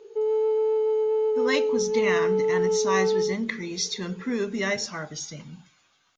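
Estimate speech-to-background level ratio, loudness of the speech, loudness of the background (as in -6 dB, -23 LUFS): -5.0 dB, -29.0 LUFS, -24.0 LUFS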